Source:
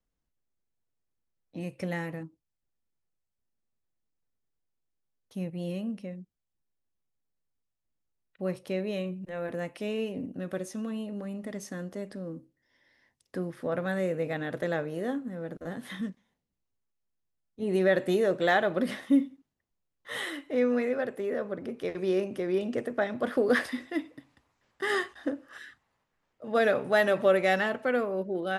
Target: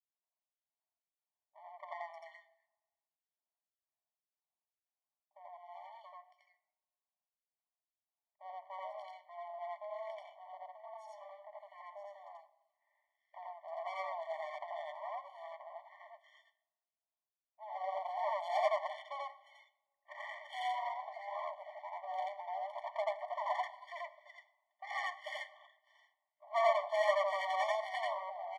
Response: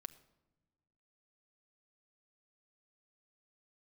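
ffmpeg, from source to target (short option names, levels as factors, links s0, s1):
-filter_complex "[0:a]lowshelf=f=290:g=8.5,asettb=1/sr,asplit=3[s0][s1][s2];[s0]atrim=end=19.104[s3];[s1]atrim=start=19.1:end=20.13,asetpts=PTS-STARTPTS,afade=t=in:d=0.004:c=qsin,afade=t=out:st=1.026:d=0.004:c=qsin,acontrast=89[s4];[s2]atrim=start=20.126[s5];[s3][s4]acrossfade=d=0.004:c1=hsin:c2=qsin[s6];[s6][s5]acrossfade=d=0.004:c1=qsin:c2=hsin,acrossover=split=410[s7][s8];[s7]aeval=exprs='val(0)*(1-1/2+1/2*cos(2*PI*1.9*n/s))':c=same[s9];[s8]aeval=exprs='val(0)*(1-1/2-1/2*cos(2*PI*1.9*n/s))':c=same[s10];[s9][s10]amix=inputs=2:normalize=0,acrossover=split=2100[s11][s12];[s12]adelay=340[s13];[s11][s13]amix=inputs=2:normalize=0,aeval=exprs='max(val(0),0)':c=same,adynamicsmooth=sensitivity=4.5:basefreq=1900,asplit=2[s14][s15];[1:a]atrim=start_sample=2205,adelay=85[s16];[s15][s16]afir=irnorm=-1:irlink=0,volume=2.24[s17];[s14][s17]amix=inputs=2:normalize=0,afftfilt=real='re*eq(mod(floor(b*sr/1024/590),2),1)':imag='im*eq(mod(floor(b*sr/1024/590),2),1)':win_size=1024:overlap=0.75,volume=1.12"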